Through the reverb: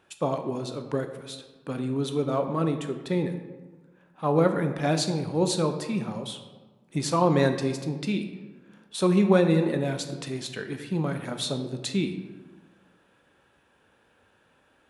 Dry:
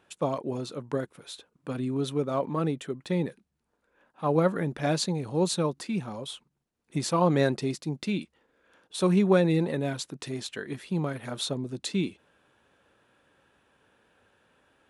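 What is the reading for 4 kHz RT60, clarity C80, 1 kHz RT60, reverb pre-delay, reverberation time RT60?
0.75 s, 10.5 dB, 1.3 s, 16 ms, 1.4 s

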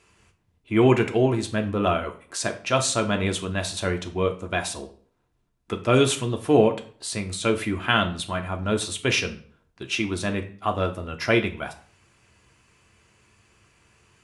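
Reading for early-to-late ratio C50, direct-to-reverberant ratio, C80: 13.5 dB, 4.0 dB, 17.5 dB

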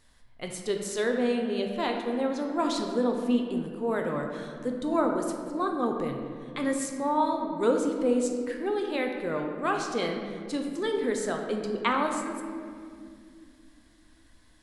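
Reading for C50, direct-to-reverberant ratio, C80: 4.0 dB, 2.0 dB, 5.5 dB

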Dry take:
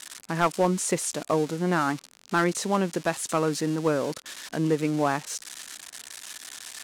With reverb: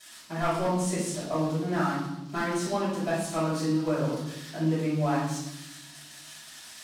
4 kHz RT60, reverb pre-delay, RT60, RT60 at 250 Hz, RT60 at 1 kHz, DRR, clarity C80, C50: 0.95 s, 3 ms, 0.90 s, 1.6 s, 0.80 s, −13.5 dB, 5.5 dB, 1.0 dB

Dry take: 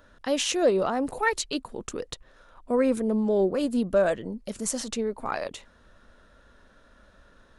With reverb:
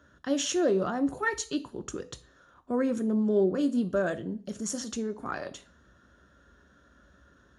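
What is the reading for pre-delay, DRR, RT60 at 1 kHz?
3 ms, 9.0 dB, 0.45 s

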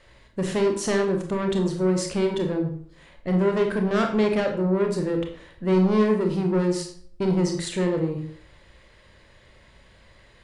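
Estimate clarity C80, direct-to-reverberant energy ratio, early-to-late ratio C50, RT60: 11.0 dB, 3.5 dB, 7.5 dB, 0.55 s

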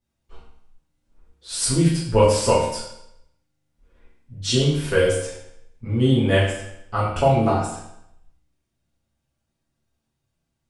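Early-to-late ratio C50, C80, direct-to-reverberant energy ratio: 2.0 dB, 5.5 dB, −9.5 dB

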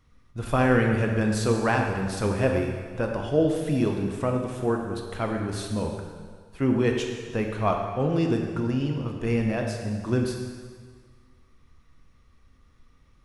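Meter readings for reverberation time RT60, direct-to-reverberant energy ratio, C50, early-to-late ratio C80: 1.7 s, 1.5 dB, 3.5 dB, 5.0 dB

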